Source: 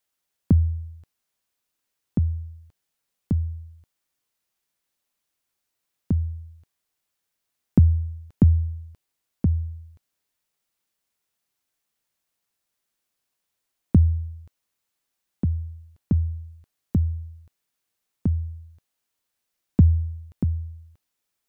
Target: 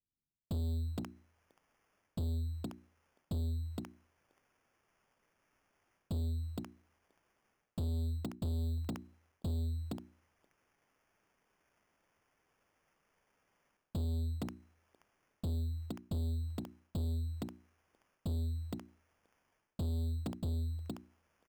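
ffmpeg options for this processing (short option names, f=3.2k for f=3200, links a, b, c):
-filter_complex "[0:a]acrossover=split=280|860[a][b][c];[b]adelay=470[d];[c]adelay=540[e];[a][d][e]amix=inputs=3:normalize=0,acrusher=samples=11:mix=1:aa=0.000001,areverse,acompressor=threshold=-26dB:ratio=8,areverse,bandreject=f=60:t=h:w=6,bandreject=f=120:t=h:w=6,bandreject=f=180:t=h:w=6,bandreject=f=240:t=h:w=6,bandreject=f=300:t=h:w=6,bandreject=f=360:t=h:w=6,asoftclip=type=tanh:threshold=-36dB,volume=3dB"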